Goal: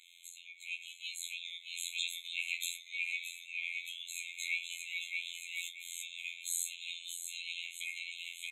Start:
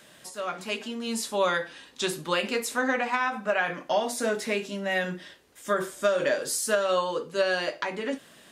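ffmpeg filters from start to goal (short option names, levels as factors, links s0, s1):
-af "bass=f=250:g=5,treble=f=4000:g=-8,bandreject=f=2900:w=5,aecho=1:1:622|1244|1866|2488|3110:0.398|0.159|0.0637|0.0255|0.0102,acompressor=threshold=0.0398:ratio=4,afftfilt=real='hypot(re,im)*cos(PI*b)':imag='0':win_size=2048:overlap=0.75,alimiter=level_in=1.33:limit=0.0631:level=0:latency=1:release=339,volume=0.75,dynaudnorm=f=410:g=7:m=3.16,afftfilt=real='re*eq(mod(floor(b*sr/1024/2100),2),1)':imag='im*eq(mod(floor(b*sr/1024/2100),2),1)':win_size=1024:overlap=0.75,volume=2.11"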